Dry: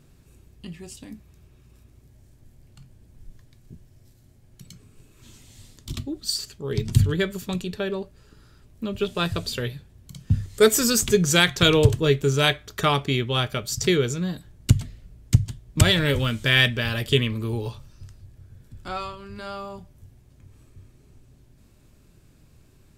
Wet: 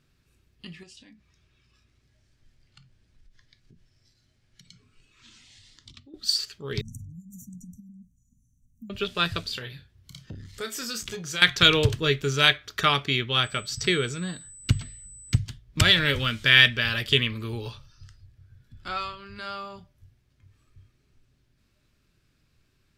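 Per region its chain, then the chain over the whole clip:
0:00.83–0:06.14: low-pass filter 8,300 Hz + downward compressor, threshold −44 dBFS + one half of a high-frequency compander encoder only
0:06.81–0:08.90: downward compressor 8 to 1, threshold −32 dBFS + linear-phase brick-wall band-stop 280–5,700 Hz
0:09.41–0:11.42: downward compressor 3 to 1, threshold −31 dBFS + double-tracking delay 31 ms −9 dB + saturating transformer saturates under 410 Hz
0:13.43–0:15.36: high-shelf EQ 7,200 Hz −11.5 dB + steady tone 8,000 Hz −39 dBFS
whole clip: noise reduction from a noise print of the clip's start 8 dB; flat-topped bell 2,600 Hz +8.5 dB 2.5 octaves; level −5.5 dB

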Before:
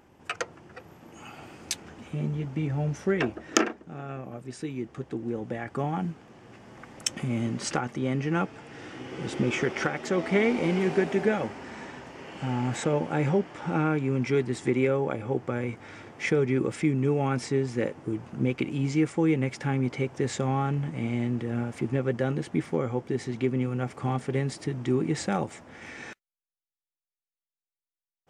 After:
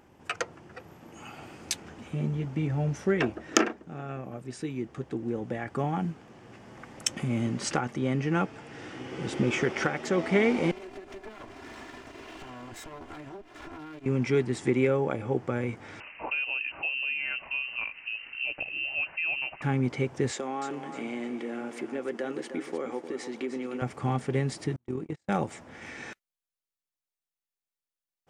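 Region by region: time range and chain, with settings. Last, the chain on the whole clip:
0:10.71–0:14.06: lower of the sound and its delayed copy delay 2.9 ms + transient designer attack +2 dB, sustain −5 dB + downward compressor 12 to 1, threshold −39 dBFS
0:16.00–0:19.62: downward compressor 1.5 to 1, threshold −40 dBFS + voice inversion scrambler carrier 2,900 Hz
0:20.31–0:23.82: high-pass filter 260 Hz 24 dB per octave + downward compressor 2 to 1, threshold −31 dBFS + repeating echo 306 ms, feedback 31%, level −9.5 dB
0:24.76–0:25.29: noise gate −27 dBFS, range −40 dB + downward compressor 2.5 to 1, threshold −28 dBFS + amplitude modulation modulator 41 Hz, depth 40%
whole clip: no processing

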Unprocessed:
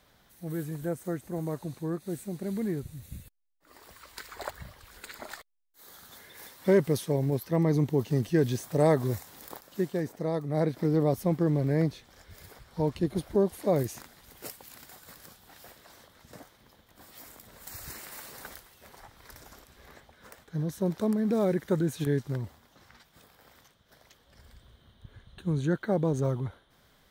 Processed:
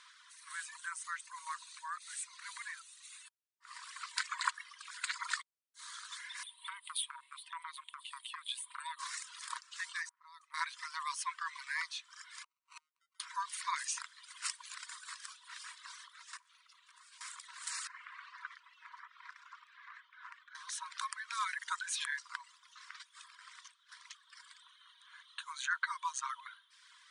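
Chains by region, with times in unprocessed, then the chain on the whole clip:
0:06.43–0:08.99: drawn EQ curve 150 Hz 0 dB, 340 Hz +12 dB, 550 Hz +14 dB, 1,400 Hz −20 dB, 3,500 Hz +1 dB, 5,900 Hz −29 dB, 9,300 Hz 0 dB + downward compressor, threshold −13 dBFS
0:10.09–0:10.54: low-pass that shuts in the quiet parts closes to 430 Hz, open at −27 dBFS + tilt shelving filter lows −3.5 dB, about 1,200 Hz + downward compressor 12 to 1, threshold −45 dBFS
0:12.43–0:13.20: downward compressor 12 to 1, threshold −38 dBFS + sample-rate reduction 1,700 Hz + gate with flip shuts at −42 dBFS, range −31 dB
0:16.37–0:17.21: downward compressor 5 to 1, threshold −56 dBFS + ring modulation 310 Hz
0:17.87–0:20.55: downward compressor 1.5 to 1, threshold −52 dBFS + low-pass filter 2,200 Hz
whole clip: brick-wall band-pass 940–10,000 Hz; reverb reduction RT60 0.97 s; level +8 dB

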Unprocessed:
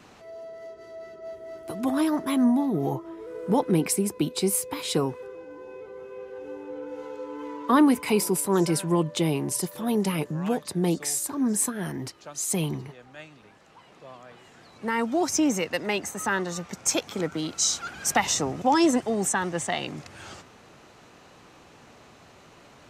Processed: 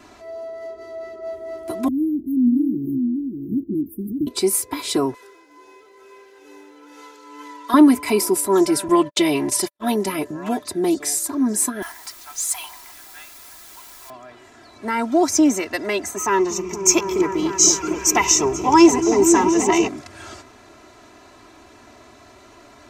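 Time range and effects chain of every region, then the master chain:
0:01.88–0:04.27: inverse Chebyshev band-stop filter 890–7,100 Hz, stop band 60 dB + flat-topped bell 730 Hz −11.5 dB + single-tap delay 586 ms −5 dB
0:05.14–0:07.74: high-pass filter 290 Hz 6 dB per octave + shaped tremolo triangle 2.3 Hz, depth 35% + tilt shelving filter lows −9 dB, about 1,400 Hz
0:08.88–0:09.94: parametric band 2,600 Hz +7.5 dB 2.8 octaves + noise gate −31 dBFS, range −55 dB
0:11.82–0:14.10: Butterworth high-pass 750 Hz 72 dB per octave + bit-depth reduction 8 bits, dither triangular
0:16.16–0:19.88: EQ curve with evenly spaced ripples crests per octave 0.76, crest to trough 13 dB + echo whose low-pass opens from repeat to repeat 239 ms, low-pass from 200 Hz, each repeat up 1 octave, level 0 dB
whole clip: parametric band 2,900 Hz −4.5 dB 0.41 octaves; comb filter 3 ms, depth 84%; level +3 dB

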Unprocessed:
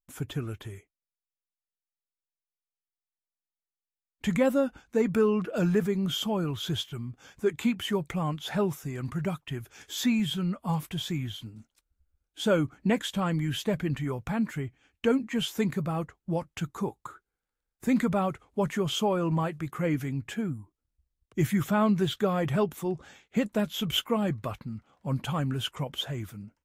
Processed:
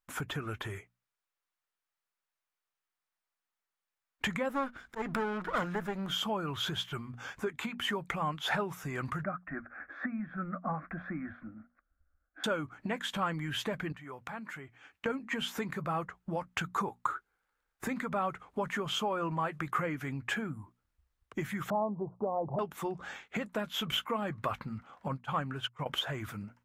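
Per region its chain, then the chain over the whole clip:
0:04.49–0:06.12: lower of the sound and its delayed copy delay 0.57 ms + volume swells 279 ms
0:09.23–0:12.44: low-pass filter 1,800 Hz 24 dB per octave + phaser with its sweep stopped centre 620 Hz, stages 8
0:13.92–0:15.06: high-pass filter 180 Hz 6 dB per octave + downward compressor 2.5 to 1, threshold −53 dBFS
0:21.70–0:22.59: Butterworth low-pass 990 Hz 72 dB per octave + parametric band 720 Hz +6.5 dB 1.5 octaves
0:25.08–0:25.86: high-shelf EQ 9,600 Hz −8.5 dB + expander for the loud parts 2.5 to 1, over −49 dBFS
whole clip: downward compressor 10 to 1, threshold −35 dBFS; parametric band 1,300 Hz +12.5 dB 2.3 octaves; mains-hum notches 60/120/180/240 Hz

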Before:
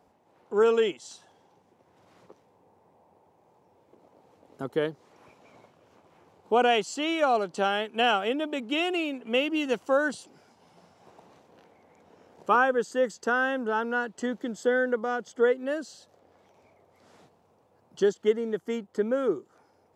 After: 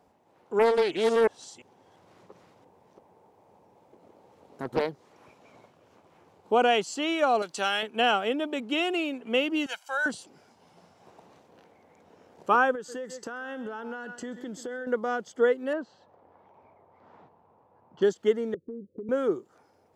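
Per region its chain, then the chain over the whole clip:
0:00.59–0:04.89: delay that plays each chunk backwards 343 ms, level −0.5 dB + highs frequency-modulated by the lows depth 0.44 ms
0:07.42–0:07.83: tilt shelving filter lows −8 dB, about 1,300 Hz + notch filter 3,100 Hz, Q 27
0:09.66–0:10.06: high-pass filter 1,300 Hz + comb filter 1.3 ms, depth 95%
0:12.75–0:14.87: hum removal 292.3 Hz, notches 35 + single-tap delay 133 ms −18.5 dB + downward compressor 16 to 1, threshold −32 dBFS
0:15.73–0:18.02: low-pass filter 2,000 Hz + parametric band 940 Hz +8.5 dB 0.54 octaves
0:18.54–0:19.09: Butterworth low-pass 540 Hz 96 dB per octave + downward compressor 10 to 1, threshold −34 dBFS
whole clip: no processing

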